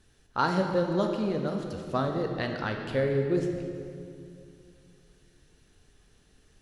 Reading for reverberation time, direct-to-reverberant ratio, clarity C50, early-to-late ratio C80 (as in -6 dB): 2.5 s, 3.0 dB, 4.5 dB, 5.5 dB